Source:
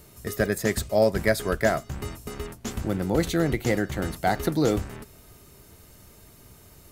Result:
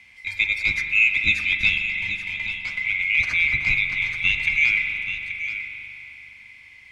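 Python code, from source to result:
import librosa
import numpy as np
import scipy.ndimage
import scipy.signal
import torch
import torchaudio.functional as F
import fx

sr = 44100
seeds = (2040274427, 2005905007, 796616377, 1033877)

p1 = fx.band_swap(x, sr, width_hz=2000)
p2 = scipy.signal.sosfilt(scipy.signal.butter(2, 2700.0, 'lowpass', fs=sr, output='sos'), p1)
p3 = fx.peak_eq(p2, sr, hz=510.0, db=-14.0, octaves=2.9)
p4 = p3 + fx.echo_single(p3, sr, ms=830, db=-10.5, dry=0)
p5 = fx.rev_spring(p4, sr, rt60_s=3.3, pass_ms=(41,), chirp_ms=80, drr_db=5.5)
y = p5 * 10.0 ** (7.5 / 20.0)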